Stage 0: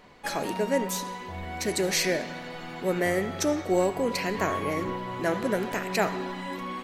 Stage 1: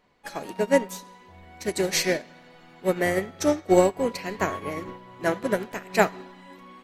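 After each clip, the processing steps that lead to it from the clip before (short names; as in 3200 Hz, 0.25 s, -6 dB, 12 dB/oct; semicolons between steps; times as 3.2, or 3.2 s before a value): upward expander 2.5:1, over -34 dBFS; gain +8 dB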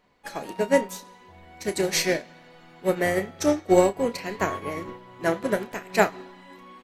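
doubler 30 ms -12.5 dB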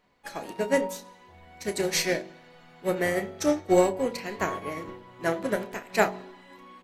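de-hum 46.89 Hz, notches 22; gain -2 dB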